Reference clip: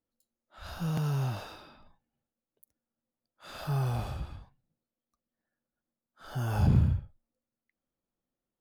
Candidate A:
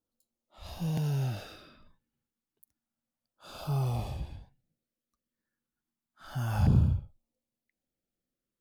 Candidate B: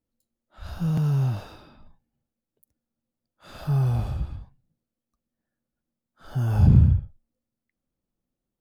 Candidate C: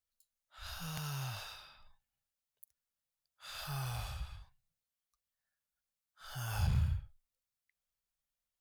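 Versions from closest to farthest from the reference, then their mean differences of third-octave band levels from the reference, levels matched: A, B, C; 1.5, 5.5, 7.5 dB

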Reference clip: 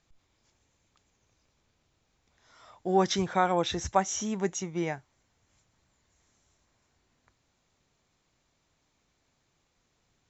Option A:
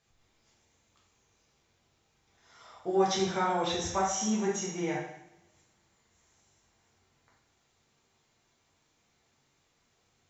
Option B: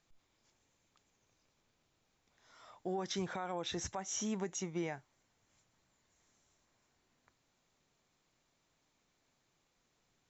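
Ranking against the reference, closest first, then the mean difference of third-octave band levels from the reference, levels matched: B, A; 4.0, 6.0 dB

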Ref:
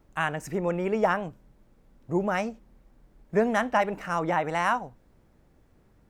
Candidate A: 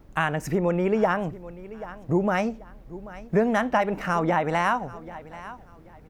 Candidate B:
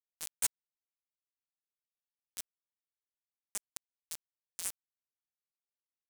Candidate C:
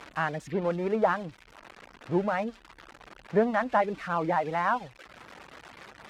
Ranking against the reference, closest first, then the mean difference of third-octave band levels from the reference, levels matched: A, C, B; 2.5, 4.0, 21.5 dB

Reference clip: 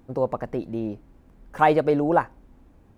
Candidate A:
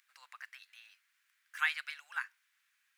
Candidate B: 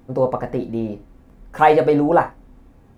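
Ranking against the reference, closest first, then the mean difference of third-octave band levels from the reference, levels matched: B, A; 1.5, 20.0 dB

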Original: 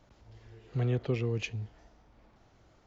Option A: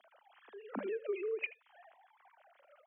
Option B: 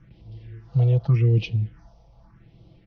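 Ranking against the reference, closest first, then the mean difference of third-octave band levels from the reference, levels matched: B, A; 6.0, 10.0 dB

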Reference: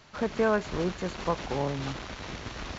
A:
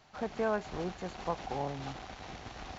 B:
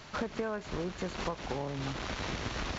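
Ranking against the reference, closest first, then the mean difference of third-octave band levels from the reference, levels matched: A, B; 1.5, 4.5 dB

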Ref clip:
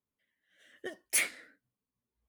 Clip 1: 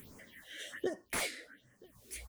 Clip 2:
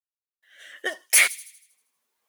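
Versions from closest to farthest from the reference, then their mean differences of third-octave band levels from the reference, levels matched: 2, 1; 6.5, 9.5 dB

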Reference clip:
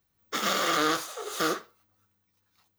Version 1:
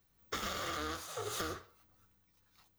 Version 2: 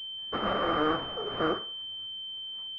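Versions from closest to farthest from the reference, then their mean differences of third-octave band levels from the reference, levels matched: 1, 2; 5.5, 13.0 dB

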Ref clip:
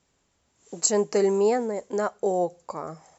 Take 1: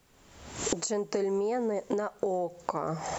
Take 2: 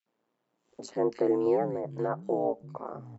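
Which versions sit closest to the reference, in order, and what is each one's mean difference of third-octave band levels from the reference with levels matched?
1, 2; 6.5, 10.0 dB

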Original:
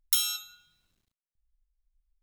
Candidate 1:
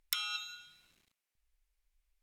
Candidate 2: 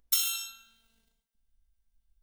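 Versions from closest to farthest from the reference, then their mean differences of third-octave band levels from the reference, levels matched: 2, 1; 4.5, 8.0 dB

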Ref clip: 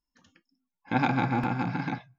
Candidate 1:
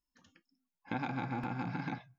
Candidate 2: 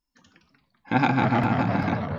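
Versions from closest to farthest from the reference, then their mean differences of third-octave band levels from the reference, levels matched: 1, 2; 2.0, 3.0 dB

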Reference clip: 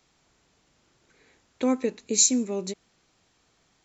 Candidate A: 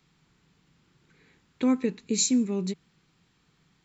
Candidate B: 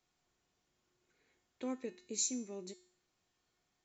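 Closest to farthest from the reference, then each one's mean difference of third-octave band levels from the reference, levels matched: B, A; 1.5, 2.5 dB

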